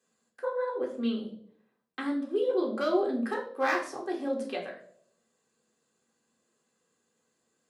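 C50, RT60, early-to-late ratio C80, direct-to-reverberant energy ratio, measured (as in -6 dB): 8.5 dB, 0.65 s, 13.0 dB, -2.5 dB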